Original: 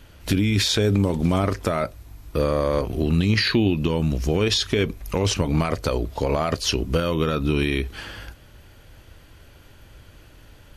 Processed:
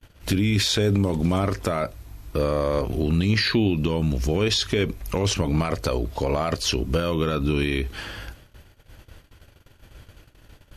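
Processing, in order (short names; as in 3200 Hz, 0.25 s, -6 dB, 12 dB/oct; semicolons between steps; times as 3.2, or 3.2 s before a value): gate -46 dBFS, range -33 dB; in parallel at -1.5 dB: limiter -18.5 dBFS, peak gain reduction 10.5 dB; on the sum: gain -4 dB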